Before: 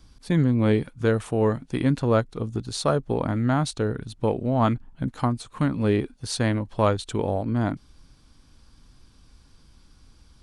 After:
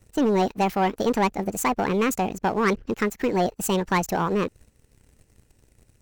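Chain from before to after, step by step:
wrong playback speed 45 rpm record played at 78 rpm
leveller curve on the samples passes 2
level −5 dB

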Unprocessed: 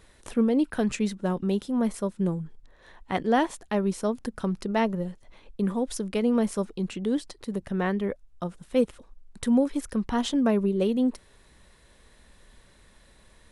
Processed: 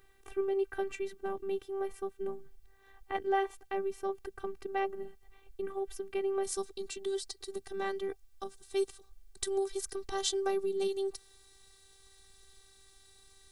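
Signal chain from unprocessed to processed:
flat-topped bell 6,100 Hz −8 dB, from 0:06.43 +10.5 dB
bit-depth reduction 12 bits, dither triangular
phases set to zero 389 Hz
level −5 dB

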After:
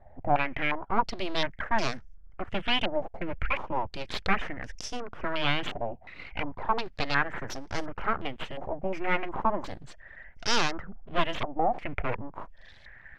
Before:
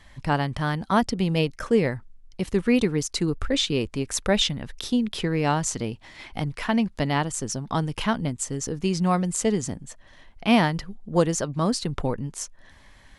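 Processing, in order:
phaser with its sweep stopped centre 1,100 Hz, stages 6
full-wave rectification
low-pass on a step sequencer 2.8 Hz 740–5,600 Hz

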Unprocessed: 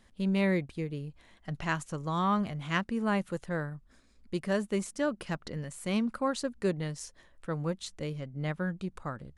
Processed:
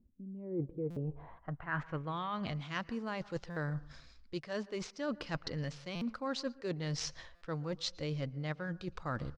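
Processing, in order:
running median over 5 samples
low-pass filter sweep 280 Hz → 5,200 Hz, 0:00.33–0:02.64
reversed playback
downward compressor 12 to 1, threshold −41 dBFS, peak gain reduction 20.5 dB
reversed playback
downsampling to 22,050 Hz
on a send at −20 dB: convolution reverb RT60 0.50 s, pre-delay 108 ms
on the sum: noise reduction from a noise print of the clip's start 10 dB
buffer that repeats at 0:00.90/0:03.50/0:05.95/0:07.35, samples 256, times 10
level +7.5 dB

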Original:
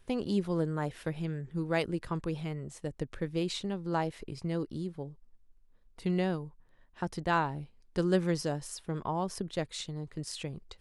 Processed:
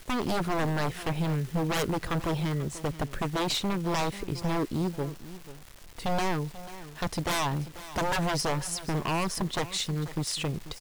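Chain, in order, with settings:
wave folding −31.5 dBFS
single-tap delay 489 ms −15.5 dB
surface crackle 470 per second −48 dBFS
bit-depth reduction 10 bits, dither none
level +9 dB

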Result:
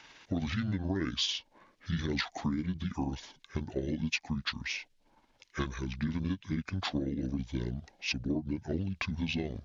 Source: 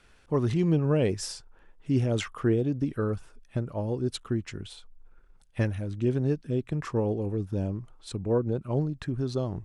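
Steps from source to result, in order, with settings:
pitch shift by two crossfaded delay taps −8 semitones
meter weighting curve D
downward compressor 6 to 1, threshold −33 dBFS, peak gain reduction 11 dB
level +4 dB

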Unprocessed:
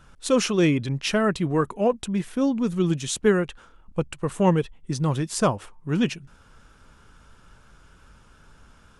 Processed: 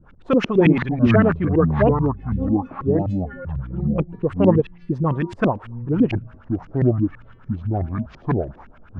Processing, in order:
auto-filter low-pass saw up 9 Hz 200–2,800 Hz
0:01.91–0:03.45: stiff-string resonator 260 Hz, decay 0.49 s, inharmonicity 0.008
delay with pitch and tempo change per echo 158 ms, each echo −7 semitones, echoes 2
level +1.5 dB

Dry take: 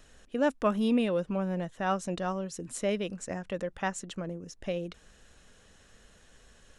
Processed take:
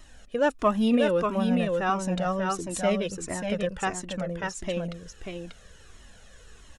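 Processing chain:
single-tap delay 590 ms −4 dB
flanger whose copies keep moving one way falling 1.5 Hz
level +8.5 dB

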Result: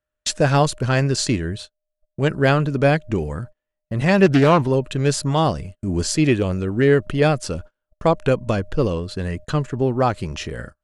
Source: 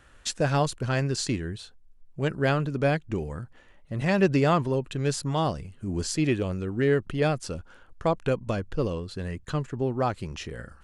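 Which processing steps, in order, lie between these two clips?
steady tone 610 Hz −56 dBFS
noise gate −41 dBFS, range −38 dB
0:04.26–0:04.68: highs frequency-modulated by the lows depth 0.33 ms
level +7.5 dB

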